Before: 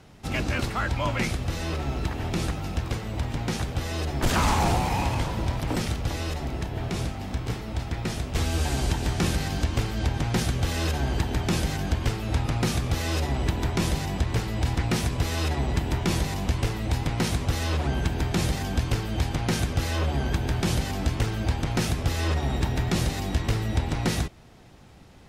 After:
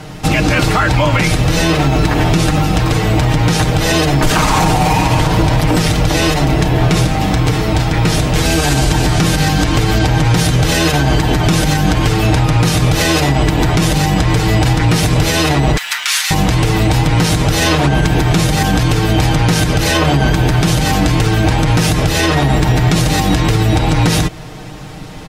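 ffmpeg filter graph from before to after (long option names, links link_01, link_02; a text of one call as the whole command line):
ffmpeg -i in.wav -filter_complex "[0:a]asettb=1/sr,asplit=3[link_01][link_02][link_03];[link_01]atrim=end=15.774[link_04];[link_02]atrim=start=15.77:end=16.31,asetpts=PTS-STARTPTS,afade=type=in:duration=0.004:curve=qsin,afade=type=out:start_time=0.536:duration=0.004:curve=qsin,highpass=frequency=1400:width=0.5412,highpass=frequency=1400:width=1.3066,aeval=exprs='sgn(val(0))*max(abs(val(0))-0.001,0)':channel_layout=same[link_05];[link_03]atrim=start=16.306[link_06];[link_04][link_05]acrossfade=duration=0.004:curve1=hsin:curve2=qsin[link_07];[link_07][link_06]acrossfade=duration=0.004:curve1=qsin:curve2=hsin,aecho=1:1:6.5:0.71,acompressor=threshold=-25dB:ratio=6,alimiter=level_in=22dB:limit=-1dB:release=50:level=0:latency=1,volume=-2.5dB" out.wav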